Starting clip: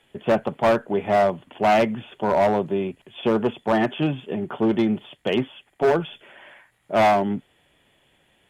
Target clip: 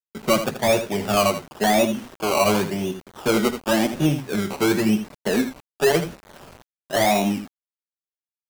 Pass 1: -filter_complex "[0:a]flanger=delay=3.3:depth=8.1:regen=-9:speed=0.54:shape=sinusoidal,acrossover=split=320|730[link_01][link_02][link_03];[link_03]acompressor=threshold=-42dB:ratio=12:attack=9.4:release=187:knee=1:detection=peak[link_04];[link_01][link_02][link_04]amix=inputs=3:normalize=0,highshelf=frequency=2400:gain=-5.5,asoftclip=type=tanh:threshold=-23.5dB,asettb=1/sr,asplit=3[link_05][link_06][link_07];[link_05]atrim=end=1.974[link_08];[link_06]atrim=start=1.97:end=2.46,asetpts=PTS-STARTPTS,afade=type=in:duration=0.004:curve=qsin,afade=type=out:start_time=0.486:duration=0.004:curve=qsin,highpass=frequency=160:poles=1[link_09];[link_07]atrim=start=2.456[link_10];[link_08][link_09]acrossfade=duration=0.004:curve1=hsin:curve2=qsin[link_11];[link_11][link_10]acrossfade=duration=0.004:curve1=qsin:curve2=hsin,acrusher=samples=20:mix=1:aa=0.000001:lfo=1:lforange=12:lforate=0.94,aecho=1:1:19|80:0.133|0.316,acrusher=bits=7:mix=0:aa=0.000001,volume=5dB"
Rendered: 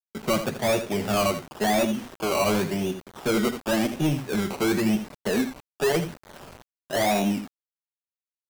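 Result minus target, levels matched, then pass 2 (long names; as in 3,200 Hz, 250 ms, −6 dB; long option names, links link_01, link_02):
downward compressor: peak gain reduction +9 dB; soft clipping: distortion +13 dB
-filter_complex "[0:a]flanger=delay=3.3:depth=8.1:regen=-9:speed=0.54:shape=sinusoidal,acrossover=split=320|730[link_01][link_02][link_03];[link_03]acompressor=threshold=-32dB:ratio=12:attack=9.4:release=187:knee=1:detection=peak[link_04];[link_01][link_02][link_04]amix=inputs=3:normalize=0,highshelf=frequency=2400:gain=-5.5,asoftclip=type=tanh:threshold=-13dB,asettb=1/sr,asplit=3[link_05][link_06][link_07];[link_05]atrim=end=1.974[link_08];[link_06]atrim=start=1.97:end=2.46,asetpts=PTS-STARTPTS,afade=type=in:duration=0.004:curve=qsin,afade=type=out:start_time=0.486:duration=0.004:curve=qsin,highpass=frequency=160:poles=1[link_09];[link_07]atrim=start=2.456[link_10];[link_08][link_09]acrossfade=duration=0.004:curve1=hsin:curve2=qsin[link_11];[link_11][link_10]acrossfade=duration=0.004:curve1=qsin:curve2=hsin,acrusher=samples=20:mix=1:aa=0.000001:lfo=1:lforange=12:lforate=0.94,aecho=1:1:19|80:0.133|0.316,acrusher=bits=7:mix=0:aa=0.000001,volume=5dB"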